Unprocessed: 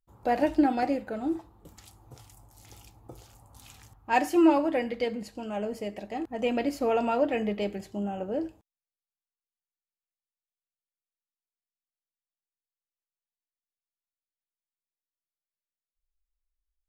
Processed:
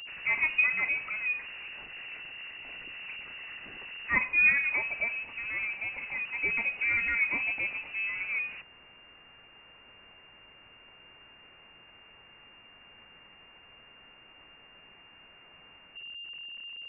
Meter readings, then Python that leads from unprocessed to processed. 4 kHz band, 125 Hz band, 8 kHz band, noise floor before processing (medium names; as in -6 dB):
+3.0 dB, -9.0 dB, under -30 dB, under -85 dBFS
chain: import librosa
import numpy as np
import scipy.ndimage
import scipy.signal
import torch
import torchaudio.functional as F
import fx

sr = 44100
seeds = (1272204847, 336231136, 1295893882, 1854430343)

y = x + 0.5 * 10.0 ** (-34.5 / 20.0) * np.sign(x)
y = fx.freq_invert(y, sr, carrier_hz=2800)
y = y * 10.0 ** (-4.0 / 20.0)